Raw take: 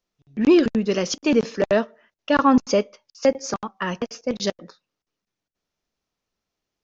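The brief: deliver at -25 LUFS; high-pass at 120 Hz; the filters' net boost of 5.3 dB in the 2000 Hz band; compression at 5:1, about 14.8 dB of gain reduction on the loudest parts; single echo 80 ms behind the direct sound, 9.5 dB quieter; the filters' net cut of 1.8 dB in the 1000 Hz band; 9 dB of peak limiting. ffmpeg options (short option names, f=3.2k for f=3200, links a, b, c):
-af "highpass=120,equalizer=f=1k:t=o:g=-4.5,equalizer=f=2k:t=o:g=8,acompressor=threshold=-29dB:ratio=5,alimiter=limit=-22.5dB:level=0:latency=1,aecho=1:1:80:0.335,volume=9dB"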